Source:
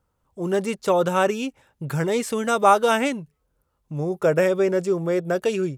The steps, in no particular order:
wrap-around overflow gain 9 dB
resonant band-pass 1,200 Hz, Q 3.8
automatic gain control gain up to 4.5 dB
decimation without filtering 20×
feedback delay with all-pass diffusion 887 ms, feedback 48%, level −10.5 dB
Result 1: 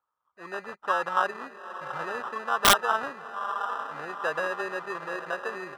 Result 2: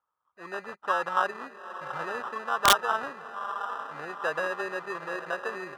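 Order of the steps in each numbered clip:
feedback delay with all-pass diffusion, then decimation without filtering, then resonant band-pass, then automatic gain control, then wrap-around overflow
automatic gain control, then feedback delay with all-pass diffusion, then decimation without filtering, then resonant band-pass, then wrap-around overflow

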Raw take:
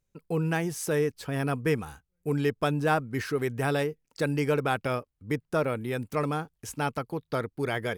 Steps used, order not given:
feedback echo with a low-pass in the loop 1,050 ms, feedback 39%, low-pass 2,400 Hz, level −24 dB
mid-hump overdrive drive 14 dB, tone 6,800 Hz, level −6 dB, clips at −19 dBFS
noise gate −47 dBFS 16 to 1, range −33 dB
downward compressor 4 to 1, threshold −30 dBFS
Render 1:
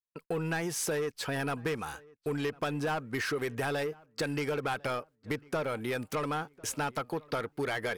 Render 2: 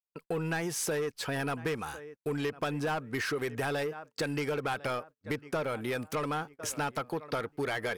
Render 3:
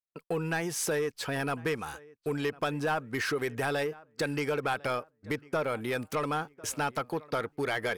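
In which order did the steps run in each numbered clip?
mid-hump overdrive, then noise gate, then downward compressor, then feedback echo with a low-pass in the loop
feedback echo with a low-pass in the loop, then mid-hump overdrive, then downward compressor, then noise gate
downward compressor, then noise gate, then feedback echo with a low-pass in the loop, then mid-hump overdrive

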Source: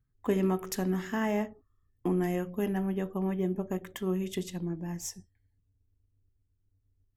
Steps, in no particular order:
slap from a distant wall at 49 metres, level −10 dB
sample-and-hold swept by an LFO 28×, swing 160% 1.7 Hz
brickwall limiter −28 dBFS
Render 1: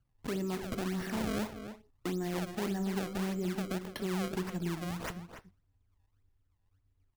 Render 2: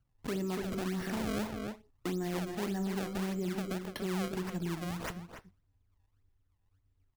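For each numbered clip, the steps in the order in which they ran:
sample-and-hold swept by an LFO, then brickwall limiter, then slap from a distant wall
sample-and-hold swept by an LFO, then slap from a distant wall, then brickwall limiter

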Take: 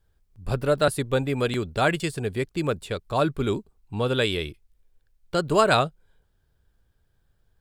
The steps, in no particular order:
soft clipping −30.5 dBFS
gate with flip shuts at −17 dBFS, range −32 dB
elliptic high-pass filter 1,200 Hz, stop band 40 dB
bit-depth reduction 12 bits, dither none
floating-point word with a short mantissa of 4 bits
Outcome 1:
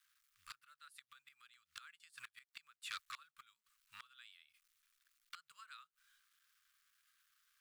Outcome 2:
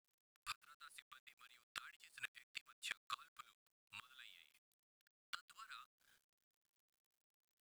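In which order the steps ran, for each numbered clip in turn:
bit-depth reduction, then floating-point word with a short mantissa, then gate with flip, then soft clipping, then elliptic high-pass filter
gate with flip, then elliptic high-pass filter, then soft clipping, then floating-point word with a short mantissa, then bit-depth reduction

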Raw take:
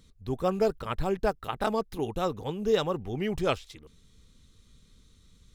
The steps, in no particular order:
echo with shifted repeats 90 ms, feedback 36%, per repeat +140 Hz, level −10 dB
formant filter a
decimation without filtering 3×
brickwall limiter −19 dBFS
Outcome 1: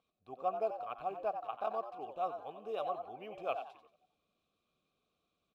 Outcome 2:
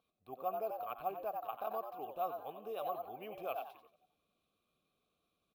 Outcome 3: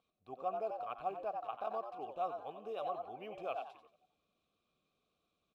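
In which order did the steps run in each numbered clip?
echo with shifted repeats, then decimation without filtering, then formant filter, then brickwall limiter
echo with shifted repeats, then brickwall limiter, then formant filter, then decimation without filtering
decimation without filtering, then echo with shifted repeats, then brickwall limiter, then formant filter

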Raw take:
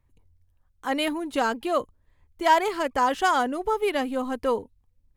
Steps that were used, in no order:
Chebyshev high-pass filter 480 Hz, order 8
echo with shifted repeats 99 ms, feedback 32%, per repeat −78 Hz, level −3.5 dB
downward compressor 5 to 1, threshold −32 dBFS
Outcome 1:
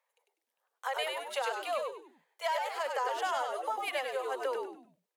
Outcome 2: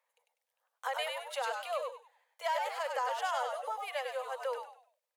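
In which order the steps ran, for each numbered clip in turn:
Chebyshev high-pass filter, then downward compressor, then echo with shifted repeats
downward compressor, then echo with shifted repeats, then Chebyshev high-pass filter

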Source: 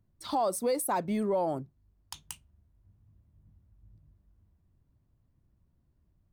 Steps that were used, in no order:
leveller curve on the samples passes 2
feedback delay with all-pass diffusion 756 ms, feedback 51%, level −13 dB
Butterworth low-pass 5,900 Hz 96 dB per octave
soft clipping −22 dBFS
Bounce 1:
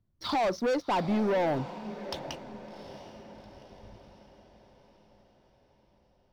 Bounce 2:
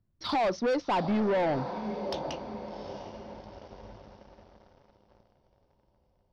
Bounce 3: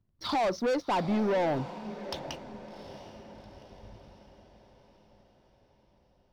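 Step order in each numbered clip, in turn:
Butterworth low-pass, then leveller curve on the samples, then soft clipping, then feedback delay with all-pass diffusion
feedback delay with all-pass diffusion, then leveller curve on the samples, then Butterworth low-pass, then soft clipping
Butterworth low-pass, then soft clipping, then leveller curve on the samples, then feedback delay with all-pass diffusion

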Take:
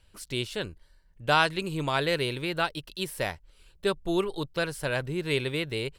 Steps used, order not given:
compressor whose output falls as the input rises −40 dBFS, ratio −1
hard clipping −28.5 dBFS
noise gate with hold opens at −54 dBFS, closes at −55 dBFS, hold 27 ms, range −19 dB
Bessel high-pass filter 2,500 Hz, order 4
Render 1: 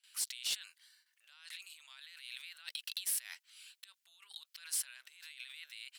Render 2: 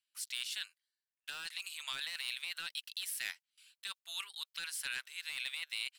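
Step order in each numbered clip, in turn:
noise gate with hold, then compressor whose output falls as the input rises, then Bessel high-pass filter, then hard clipping
Bessel high-pass filter, then hard clipping, then compressor whose output falls as the input rises, then noise gate with hold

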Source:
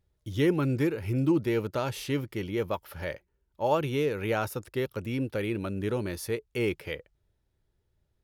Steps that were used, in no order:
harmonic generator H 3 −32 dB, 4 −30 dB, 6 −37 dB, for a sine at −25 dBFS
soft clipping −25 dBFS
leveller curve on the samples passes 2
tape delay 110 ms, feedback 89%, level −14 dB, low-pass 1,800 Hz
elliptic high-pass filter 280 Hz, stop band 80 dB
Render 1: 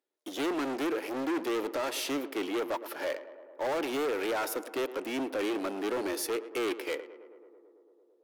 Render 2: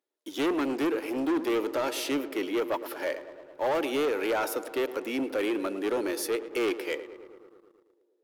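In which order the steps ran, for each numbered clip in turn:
leveller curve on the samples, then tape delay, then harmonic generator, then elliptic high-pass filter, then soft clipping
harmonic generator, then soft clipping, then elliptic high-pass filter, then tape delay, then leveller curve on the samples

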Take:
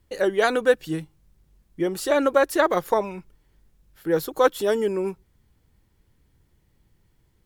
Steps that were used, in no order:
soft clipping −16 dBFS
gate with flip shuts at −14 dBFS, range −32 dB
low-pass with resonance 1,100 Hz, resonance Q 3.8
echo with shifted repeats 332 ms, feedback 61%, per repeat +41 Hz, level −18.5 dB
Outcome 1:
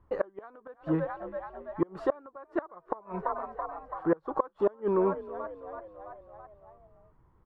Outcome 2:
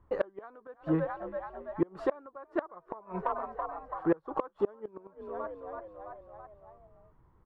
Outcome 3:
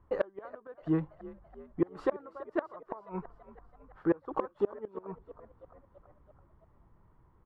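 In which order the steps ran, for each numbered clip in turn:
echo with shifted repeats, then gate with flip, then soft clipping, then low-pass with resonance
echo with shifted repeats, then low-pass with resonance, then gate with flip, then soft clipping
low-pass with resonance, then gate with flip, then echo with shifted repeats, then soft clipping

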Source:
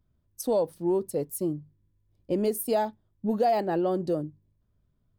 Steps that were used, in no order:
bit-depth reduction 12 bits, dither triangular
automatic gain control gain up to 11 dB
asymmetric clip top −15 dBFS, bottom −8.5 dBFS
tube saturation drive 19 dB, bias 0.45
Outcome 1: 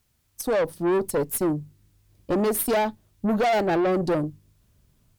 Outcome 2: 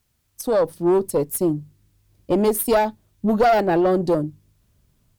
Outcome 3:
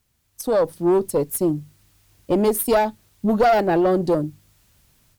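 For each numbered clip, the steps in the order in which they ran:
automatic gain control, then tube saturation, then bit-depth reduction, then asymmetric clip
tube saturation, then automatic gain control, then bit-depth reduction, then asymmetric clip
tube saturation, then bit-depth reduction, then automatic gain control, then asymmetric clip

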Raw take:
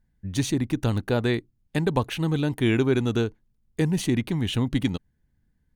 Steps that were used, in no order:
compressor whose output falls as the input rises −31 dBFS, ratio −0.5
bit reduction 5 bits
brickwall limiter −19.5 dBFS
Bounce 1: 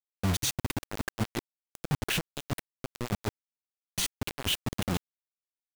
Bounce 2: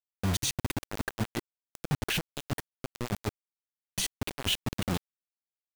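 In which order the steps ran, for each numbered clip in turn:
compressor whose output falls as the input rises, then brickwall limiter, then bit reduction
compressor whose output falls as the input rises, then bit reduction, then brickwall limiter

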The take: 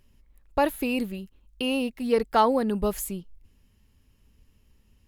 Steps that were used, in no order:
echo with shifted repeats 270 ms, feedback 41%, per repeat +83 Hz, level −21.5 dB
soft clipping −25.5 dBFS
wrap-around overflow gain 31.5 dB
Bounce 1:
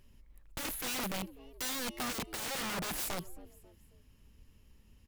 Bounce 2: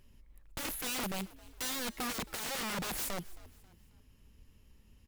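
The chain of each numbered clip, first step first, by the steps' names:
soft clipping, then echo with shifted repeats, then wrap-around overflow
soft clipping, then wrap-around overflow, then echo with shifted repeats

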